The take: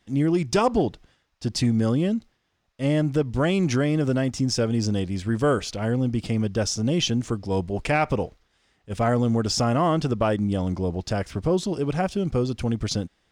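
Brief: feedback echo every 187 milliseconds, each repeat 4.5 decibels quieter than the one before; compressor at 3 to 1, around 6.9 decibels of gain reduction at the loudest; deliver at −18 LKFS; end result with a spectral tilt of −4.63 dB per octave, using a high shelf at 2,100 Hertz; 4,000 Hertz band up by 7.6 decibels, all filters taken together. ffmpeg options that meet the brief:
ffmpeg -i in.wav -af "highshelf=frequency=2100:gain=7,equalizer=frequency=4000:width_type=o:gain=3,acompressor=threshold=-24dB:ratio=3,aecho=1:1:187|374|561|748|935|1122|1309|1496|1683:0.596|0.357|0.214|0.129|0.0772|0.0463|0.0278|0.0167|0.01,volume=8dB" out.wav

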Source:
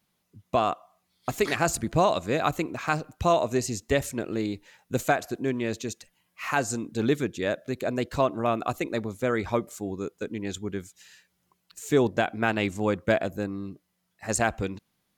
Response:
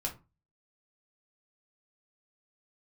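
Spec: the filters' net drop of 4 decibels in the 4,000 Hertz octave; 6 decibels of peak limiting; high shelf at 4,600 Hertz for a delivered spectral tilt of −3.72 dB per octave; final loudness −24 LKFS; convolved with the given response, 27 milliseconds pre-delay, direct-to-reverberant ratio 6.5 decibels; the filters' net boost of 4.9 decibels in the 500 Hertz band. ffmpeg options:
-filter_complex "[0:a]equalizer=frequency=500:width_type=o:gain=6.5,equalizer=frequency=4000:width_type=o:gain=-3.5,highshelf=frequency=4600:gain=-3.5,alimiter=limit=-12.5dB:level=0:latency=1,asplit=2[link_01][link_02];[1:a]atrim=start_sample=2205,adelay=27[link_03];[link_02][link_03]afir=irnorm=-1:irlink=0,volume=-8.5dB[link_04];[link_01][link_04]amix=inputs=2:normalize=0,volume=1.5dB"

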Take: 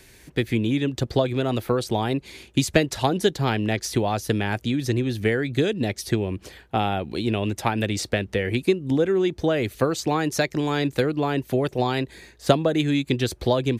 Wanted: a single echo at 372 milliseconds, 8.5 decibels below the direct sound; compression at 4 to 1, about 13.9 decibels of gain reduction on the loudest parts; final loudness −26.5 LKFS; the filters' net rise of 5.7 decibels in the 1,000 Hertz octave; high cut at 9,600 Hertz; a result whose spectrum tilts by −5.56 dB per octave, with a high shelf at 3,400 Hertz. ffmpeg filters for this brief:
ffmpeg -i in.wav -af "lowpass=9600,equalizer=frequency=1000:width_type=o:gain=8.5,highshelf=frequency=3400:gain=-7.5,acompressor=threshold=-31dB:ratio=4,aecho=1:1:372:0.376,volume=7dB" out.wav

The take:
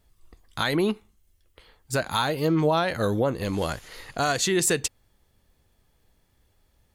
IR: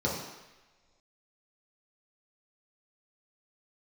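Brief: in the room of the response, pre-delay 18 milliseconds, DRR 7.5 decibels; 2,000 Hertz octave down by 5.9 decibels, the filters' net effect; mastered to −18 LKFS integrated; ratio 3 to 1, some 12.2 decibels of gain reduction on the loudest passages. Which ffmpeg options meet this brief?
-filter_complex "[0:a]equalizer=frequency=2000:width_type=o:gain=-8.5,acompressor=threshold=-36dB:ratio=3,asplit=2[link_01][link_02];[1:a]atrim=start_sample=2205,adelay=18[link_03];[link_02][link_03]afir=irnorm=-1:irlink=0,volume=-17dB[link_04];[link_01][link_04]amix=inputs=2:normalize=0,volume=17.5dB"

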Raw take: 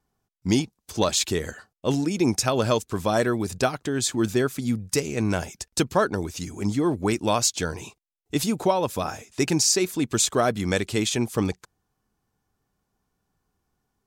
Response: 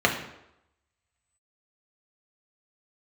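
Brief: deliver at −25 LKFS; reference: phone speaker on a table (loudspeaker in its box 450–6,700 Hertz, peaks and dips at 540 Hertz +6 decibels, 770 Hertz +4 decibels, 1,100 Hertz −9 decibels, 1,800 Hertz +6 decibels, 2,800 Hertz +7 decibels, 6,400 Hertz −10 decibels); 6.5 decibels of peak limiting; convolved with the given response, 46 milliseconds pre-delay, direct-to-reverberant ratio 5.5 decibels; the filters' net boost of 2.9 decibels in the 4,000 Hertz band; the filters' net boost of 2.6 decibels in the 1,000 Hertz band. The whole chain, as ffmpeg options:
-filter_complex "[0:a]equalizer=frequency=1000:width_type=o:gain=3,equalizer=frequency=4000:width_type=o:gain=3,alimiter=limit=-12.5dB:level=0:latency=1,asplit=2[link_01][link_02];[1:a]atrim=start_sample=2205,adelay=46[link_03];[link_02][link_03]afir=irnorm=-1:irlink=0,volume=-22.5dB[link_04];[link_01][link_04]amix=inputs=2:normalize=0,highpass=frequency=450:width=0.5412,highpass=frequency=450:width=1.3066,equalizer=frequency=540:width_type=q:width=4:gain=6,equalizer=frequency=770:width_type=q:width=4:gain=4,equalizer=frequency=1100:width_type=q:width=4:gain=-9,equalizer=frequency=1800:width_type=q:width=4:gain=6,equalizer=frequency=2800:width_type=q:width=4:gain=7,equalizer=frequency=6400:width_type=q:width=4:gain=-10,lowpass=frequency=6700:width=0.5412,lowpass=frequency=6700:width=1.3066,volume=1dB"

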